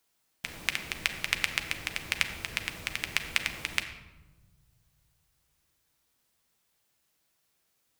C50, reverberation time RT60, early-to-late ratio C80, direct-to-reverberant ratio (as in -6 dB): 9.5 dB, 1.2 s, 11.0 dB, 6.0 dB